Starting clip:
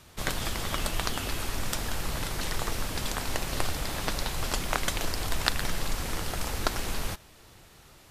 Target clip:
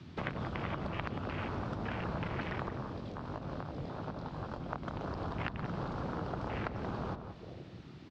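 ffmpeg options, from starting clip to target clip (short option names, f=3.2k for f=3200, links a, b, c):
-filter_complex "[0:a]acrossover=split=210[a][b];[b]acompressor=threshold=-38dB:ratio=2.5[c];[a][c]amix=inputs=2:normalize=0,highpass=120,acompressor=threshold=-47dB:ratio=4,asettb=1/sr,asplit=3[d][e][f];[d]atrim=end=2.694[g];[e]atrim=start=2.69:end=4.73,asetpts=PTS-STARTPTS,afade=t=in:d=0.004:c=qsin,afade=t=out:st=2.036:d=0.004:c=qsin,flanger=delay=18.5:depth=6.5:speed=2.9[h];[f]atrim=start=4.726[i];[g][h]acrossfade=d=0.004:c1=hsin:c2=qsin[j];[j][i]acrossfade=d=0.004:c1=qsin:c2=hsin,afwtdn=0.00316,lowpass=f=4.7k:w=0.5412,lowpass=f=4.7k:w=1.3066,asplit=2[k][l];[l]adelay=179,lowpass=f=1.4k:p=1,volume=-7dB,asplit=2[m][n];[n]adelay=179,lowpass=f=1.4k:p=1,volume=0.36,asplit=2[o][p];[p]adelay=179,lowpass=f=1.4k:p=1,volume=0.36,asplit=2[q][r];[r]adelay=179,lowpass=f=1.4k:p=1,volume=0.36[s];[k][m][o][q][s]amix=inputs=5:normalize=0,volume=12.5dB"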